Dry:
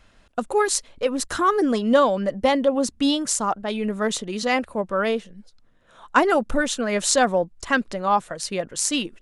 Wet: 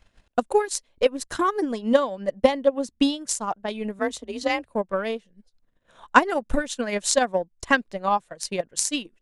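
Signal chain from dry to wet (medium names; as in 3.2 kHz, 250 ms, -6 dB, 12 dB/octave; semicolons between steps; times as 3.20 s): peaking EQ 1.3 kHz -6 dB 0.22 oct; transient shaper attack +11 dB, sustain -9 dB; 3.99–4.67 s: frequency shift +38 Hz; 6.16–6.95 s: tape noise reduction on one side only encoder only; trim -6.5 dB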